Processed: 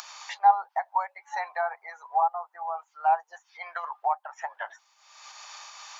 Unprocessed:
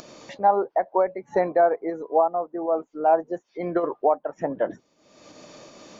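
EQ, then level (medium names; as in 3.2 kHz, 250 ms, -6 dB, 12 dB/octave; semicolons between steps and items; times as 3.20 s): Chebyshev high-pass 820 Hz, order 5; dynamic bell 1.4 kHz, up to -7 dB, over -41 dBFS, Q 0.79; +6.5 dB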